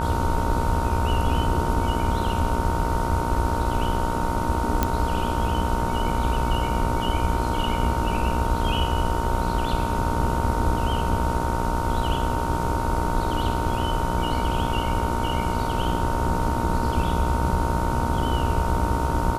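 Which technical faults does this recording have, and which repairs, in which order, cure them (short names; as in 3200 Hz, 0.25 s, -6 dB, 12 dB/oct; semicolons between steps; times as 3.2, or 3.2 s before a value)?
buzz 60 Hz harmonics 25 -28 dBFS
tone 920 Hz -28 dBFS
4.83 pop -6 dBFS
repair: de-click; notch 920 Hz, Q 30; de-hum 60 Hz, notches 25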